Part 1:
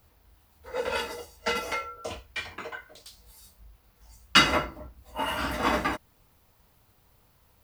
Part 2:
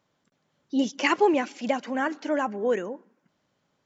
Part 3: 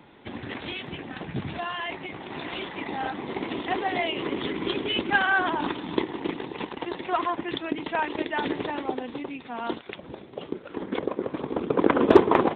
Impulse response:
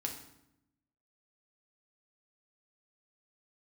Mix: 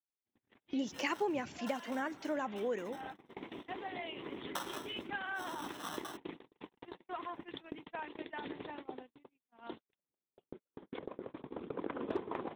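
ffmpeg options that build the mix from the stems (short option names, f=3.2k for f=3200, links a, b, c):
-filter_complex "[0:a]acrusher=samples=19:mix=1:aa=0.000001,highpass=820,adelay=200,volume=-12.5dB[a];[1:a]volume=-2.5dB[b];[2:a]volume=-13.5dB[c];[a][b][c]amix=inputs=3:normalize=0,agate=range=-45dB:threshold=-44dB:ratio=16:detection=peak,acompressor=threshold=-40dB:ratio=2"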